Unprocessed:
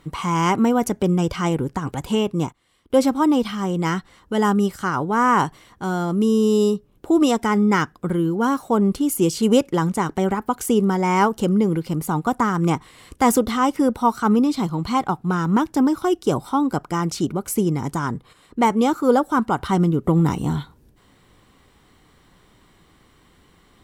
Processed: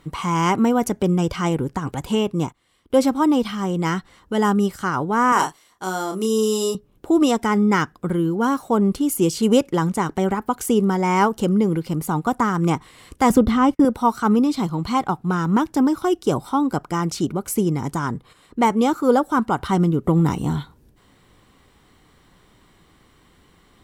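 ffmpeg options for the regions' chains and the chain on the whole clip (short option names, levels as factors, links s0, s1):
-filter_complex "[0:a]asettb=1/sr,asplit=3[s0][s1][s2];[s0]atrim=end=5.324[s3];[s1]atrim=start=5.32:end=6.75,asetpts=PTS-STARTPTS,afade=t=in:d=0.004:c=qsin,afade=t=out:st=1.426:d=0.004:c=qsin,agate=range=0.355:threshold=0.01:ratio=16:release=100:detection=peak,bass=f=250:g=-14,treble=f=4000:g=8,asplit=2[s4][s5];[s5]adelay=32,volume=0.501[s6];[s4][s6]amix=inputs=2:normalize=0,atrim=end_sample=63063[s7];[s2]atrim=start=6.746[s8];[s3][s7]acrossfade=d=0.004:c1=hsin:c2=qsin[s9];[s9][s8]acrossfade=d=0.004:c1=qsin:c2=hsin,asettb=1/sr,asplit=3[s10][s11][s12];[s10]atrim=end=13.304[s13];[s11]atrim=start=13.3:end=13.85,asetpts=PTS-STARTPTS,afade=t=in:d=0.004:c=qsin,afade=t=out:st=0.546:d=0.004:c=qsin,agate=range=0.01:threshold=0.0282:ratio=16:release=100:detection=peak,bass=f=250:g=11,treble=f=4000:g=-8[s14];[s12]atrim=start=13.846[s15];[s13][s14]acrossfade=d=0.004:c1=hsin:c2=qsin[s16];[s16][s15]acrossfade=d=0.004:c1=qsin:c2=hsin"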